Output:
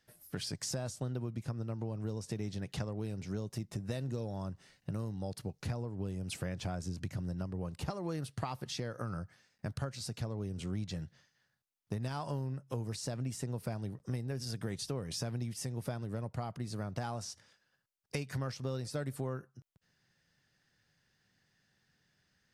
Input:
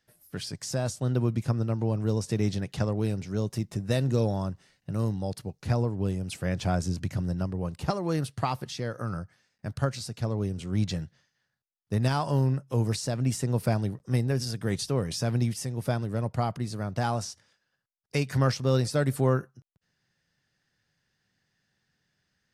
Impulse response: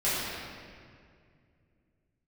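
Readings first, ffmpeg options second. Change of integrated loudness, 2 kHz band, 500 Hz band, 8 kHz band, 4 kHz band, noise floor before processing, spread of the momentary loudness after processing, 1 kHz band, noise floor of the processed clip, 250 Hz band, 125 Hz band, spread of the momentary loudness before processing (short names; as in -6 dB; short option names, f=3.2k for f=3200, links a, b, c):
-10.5 dB, -9.5 dB, -11.0 dB, -6.0 dB, -7.0 dB, -79 dBFS, 4 LU, -11.0 dB, -78 dBFS, -10.0 dB, -10.5 dB, 9 LU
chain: -af "acompressor=threshold=-36dB:ratio=6,volume=1dB"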